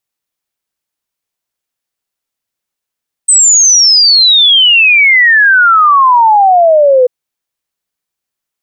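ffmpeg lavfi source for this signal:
-f lavfi -i "aevalsrc='0.708*clip(min(t,3.79-t)/0.01,0,1)*sin(2*PI*8300*3.79/log(490/8300)*(exp(log(490/8300)*t/3.79)-1))':d=3.79:s=44100"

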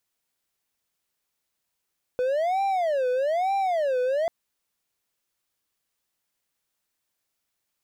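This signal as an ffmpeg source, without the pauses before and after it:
-f lavfi -i "aevalsrc='0.106*(1-4*abs(mod((644*t-145/(2*PI*1.1)*sin(2*PI*1.1*t))+0.25,1)-0.5))':d=2.09:s=44100"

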